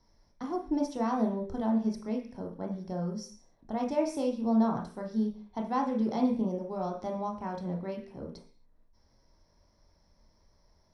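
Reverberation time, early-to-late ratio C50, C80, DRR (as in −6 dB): 0.45 s, 7.5 dB, 14.0 dB, 1.5 dB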